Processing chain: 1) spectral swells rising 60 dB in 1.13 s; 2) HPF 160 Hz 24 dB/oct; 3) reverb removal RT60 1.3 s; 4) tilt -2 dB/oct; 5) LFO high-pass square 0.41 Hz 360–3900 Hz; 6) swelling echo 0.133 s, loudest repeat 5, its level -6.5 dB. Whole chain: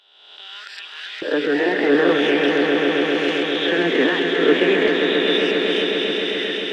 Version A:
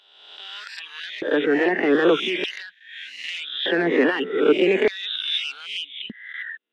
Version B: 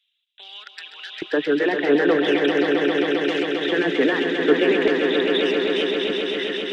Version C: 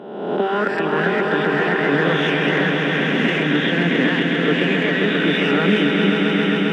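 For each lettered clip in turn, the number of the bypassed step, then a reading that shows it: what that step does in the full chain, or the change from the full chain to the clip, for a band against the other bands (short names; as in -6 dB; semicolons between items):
6, echo-to-direct 3.0 dB to none; 1, loudness change -2.0 LU; 5, 125 Hz band +11.5 dB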